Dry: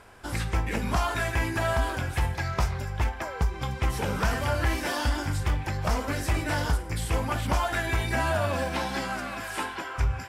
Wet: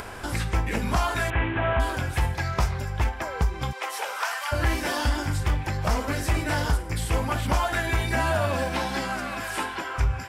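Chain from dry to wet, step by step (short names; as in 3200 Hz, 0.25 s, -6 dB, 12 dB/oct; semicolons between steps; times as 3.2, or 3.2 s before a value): 1.3–1.8 delta modulation 16 kbps, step -30.5 dBFS; 3.71–4.51 HPF 440 Hz -> 930 Hz 24 dB/oct; upward compressor, threshold -29 dBFS; gain +2 dB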